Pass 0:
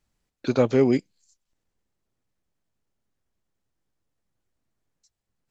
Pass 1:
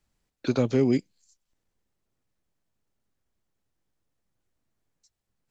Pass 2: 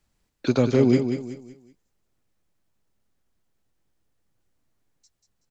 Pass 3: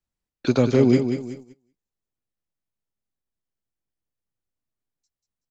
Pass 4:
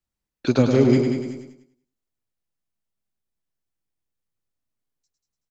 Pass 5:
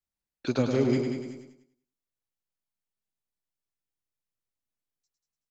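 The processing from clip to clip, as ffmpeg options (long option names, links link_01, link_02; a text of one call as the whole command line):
ffmpeg -i in.wav -filter_complex "[0:a]acrossover=split=320|3000[link_01][link_02][link_03];[link_02]acompressor=threshold=-28dB:ratio=4[link_04];[link_01][link_04][link_03]amix=inputs=3:normalize=0" out.wav
ffmpeg -i in.wav -af "aecho=1:1:188|376|564|752:0.422|0.143|0.0487|0.0166,volume=3.5dB" out.wav
ffmpeg -i in.wav -af "agate=range=-17dB:threshold=-41dB:ratio=16:detection=peak,volume=1.5dB" out.wav
ffmpeg -i in.wav -af "aecho=1:1:104|208|312:0.501|0.13|0.0339" out.wav
ffmpeg -i in.wav -af "lowshelf=frequency=400:gain=-3.5,volume=-6dB" out.wav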